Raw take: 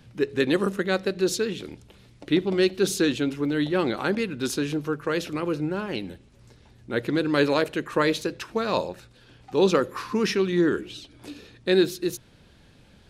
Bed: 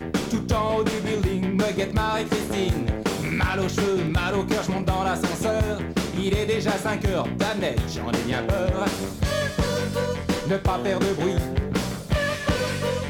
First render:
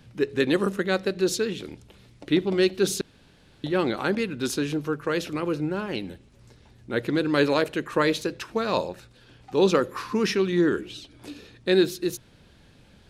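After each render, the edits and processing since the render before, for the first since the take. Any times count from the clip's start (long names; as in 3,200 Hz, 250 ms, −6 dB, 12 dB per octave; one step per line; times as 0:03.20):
0:03.01–0:03.64: fill with room tone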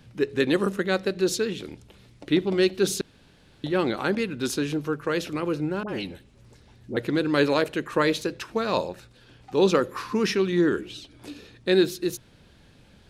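0:05.83–0:06.97: all-pass dispersion highs, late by 56 ms, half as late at 890 Hz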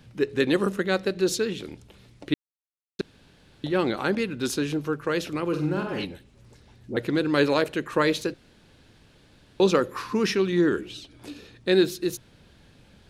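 0:02.34–0:02.99: silence
0:05.48–0:06.05: flutter between parallel walls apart 8 metres, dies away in 0.48 s
0:08.34–0:09.60: fill with room tone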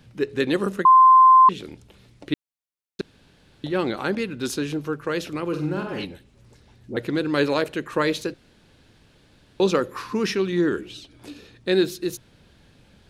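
0:00.85–0:01.49: beep over 1,040 Hz −8.5 dBFS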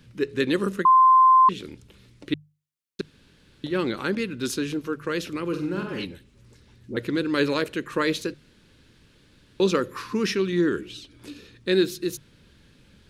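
parametric band 730 Hz −10.5 dB 0.62 octaves
mains-hum notches 50/100/150 Hz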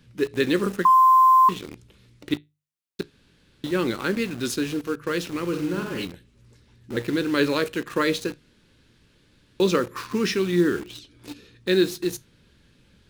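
tuned comb filter 59 Hz, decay 0.2 s, harmonics all, mix 50%
in parallel at −5 dB: bit-depth reduction 6 bits, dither none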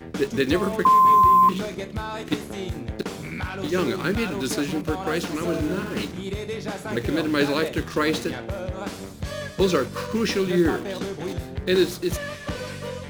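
mix in bed −7.5 dB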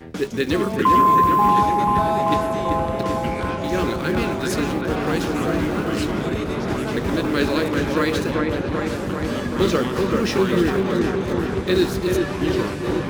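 on a send: delay with a low-pass on its return 388 ms, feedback 72%, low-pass 2,400 Hz, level −3 dB
on the sum: delay with pitch and tempo change per echo 316 ms, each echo −4 semitones, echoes 3, each echo −6 dB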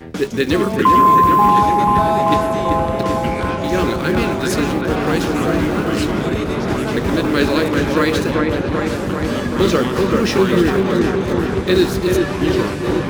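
level +4.5 dB
brickwall limiter −3 dBFS, peak gain reduction 2 dB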